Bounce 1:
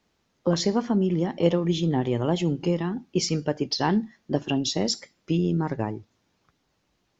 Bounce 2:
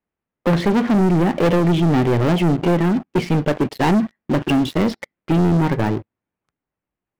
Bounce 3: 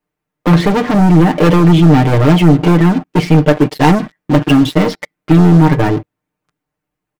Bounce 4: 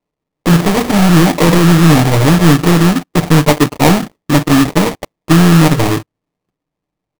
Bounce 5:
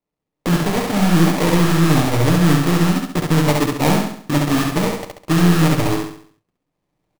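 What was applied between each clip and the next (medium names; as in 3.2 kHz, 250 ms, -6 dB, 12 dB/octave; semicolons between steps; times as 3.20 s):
low-pass 2.5 kHz 24 dB/octave; waveshaping leveller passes 5; trim -4 dB
comb 6.6 ms, depth 81%; trim +5 dB
sample-rate reducer 1.5 kHz, jitter 20%
recorder AGC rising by 12 dB/s; on a send: feedback delay 68 ms, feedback 43%, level -3 dB; on the sum: trim -8.5 dB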